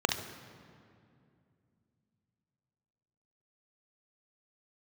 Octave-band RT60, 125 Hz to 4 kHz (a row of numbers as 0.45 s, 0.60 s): 3.8 s, 3.6 s, 2.7 s, 2.3 s, 2.0 s, 1.5 s